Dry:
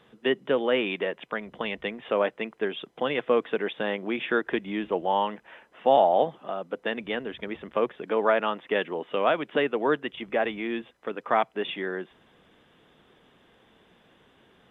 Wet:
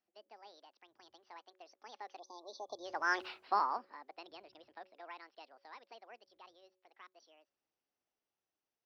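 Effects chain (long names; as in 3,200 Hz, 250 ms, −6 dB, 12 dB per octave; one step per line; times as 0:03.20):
gliding playback speed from 144% → 188%
source passing by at 0:03.25, 31 m/s, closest 1.6 metres
time-frequency box erased 0:02.19–0:02.85, 1,200–3,400 Hz
hum removal 185.5 Hz, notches 3
level +3.5 dB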